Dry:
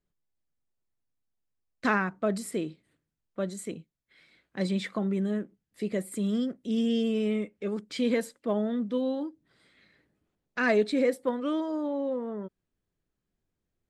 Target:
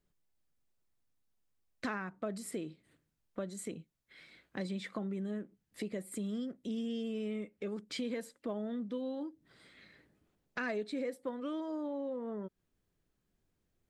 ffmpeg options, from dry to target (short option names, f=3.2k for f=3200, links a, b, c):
-af "acompressor=threshold=-43dB:ratio=3,volume=3dB"